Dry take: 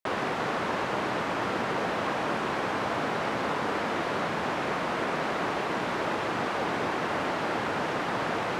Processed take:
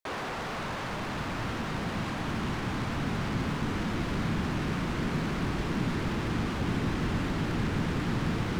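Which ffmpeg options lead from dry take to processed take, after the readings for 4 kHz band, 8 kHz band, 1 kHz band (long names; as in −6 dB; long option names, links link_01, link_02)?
−2.5 dB, −1.0 dB, −7.5 dB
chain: -af "bandreject=frequency=63.79:width_type=h:width=4,bandreject=frequency=127.58:width_type=h:width=4,bandreject=frequency=191.37:width_type=h:width=4,bandreject=frequency=255.16:width_type=h:width=4,bandreject=frequency=318.95:width_type=h:width=4,bandreject=frequency=382.74:width_type=h:width=4,bandreject=frequency=446.53:width_type=h:width=4,bandreject=frequency=510.32:width_type=h:width=4,bandreject=frequency=574.11:width_type=h:width=4,bandreject=frequency=637.9:width_type=h:width=4,volume=31.5dB,asoftclip=hard,volume=-31.5dB,asubboost=boost=11:cutoff=190,volume=-1dB"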